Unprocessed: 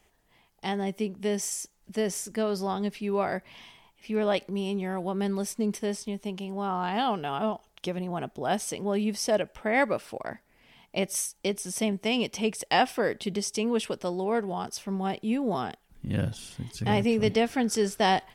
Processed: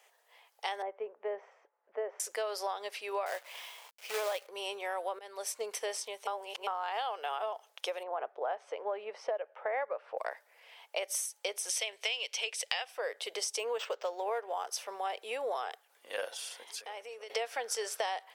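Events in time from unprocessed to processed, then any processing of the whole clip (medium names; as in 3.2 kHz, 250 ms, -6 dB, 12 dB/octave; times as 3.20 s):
0.82–2.20 s: Bessel low-pass 1.1 kHz, order 4
3.26–4.47 s: companded quantiser 4-bit
5.19–5.61 s: fade in, from -21 dB
6.27–6.67 s: reverse
8.03–10.18 s: low-pass 1.5 kHz
11.69–12.85 s: frequency weighting D
13.59–14.66 s: decimation joined by straight lines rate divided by 4×
16.63–17.30 s: compression 12:1, threshold -37 dBFS
whole clip: elliptic high-pass 490 Hz, stop band 70 dB; compression 16:1, threshold -34 dBFS; trim +3 dB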